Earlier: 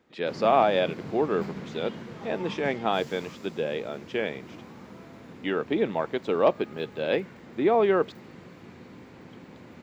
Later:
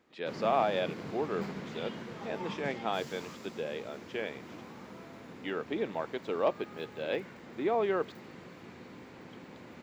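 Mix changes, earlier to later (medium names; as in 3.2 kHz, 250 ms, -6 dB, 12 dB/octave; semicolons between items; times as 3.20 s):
speech -6.5 dB; master: add bass shelf 240 Hz -6 dB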